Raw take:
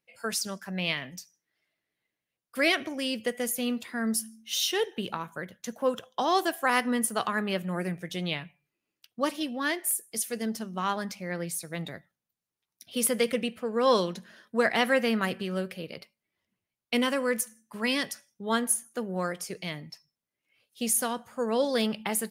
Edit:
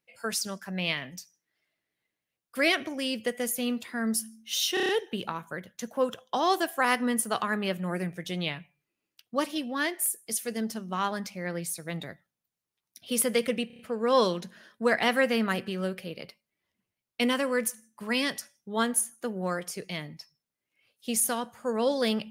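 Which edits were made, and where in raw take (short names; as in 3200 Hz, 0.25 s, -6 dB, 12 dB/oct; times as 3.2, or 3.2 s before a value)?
4.74 stutter 0.03 s, 6 plays
13.52 stutter 0.03 s, 5 plays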